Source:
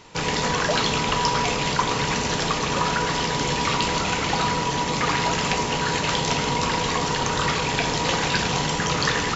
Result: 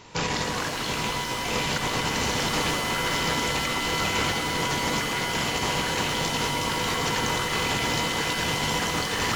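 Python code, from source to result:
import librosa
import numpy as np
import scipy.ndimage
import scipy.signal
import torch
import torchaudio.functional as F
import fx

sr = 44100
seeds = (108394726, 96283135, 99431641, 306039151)

y = fx.over_compress(x, sr, threshold_db=-25.0, ratio=-0.5)
y = fx.rev_shimmer(y, sr, seeds[0], rt60_s=2.4, semitones=7, shimmer_db=-2, drr_db=6.0)
y = y * librosa.db_to_amplitude(-3.0)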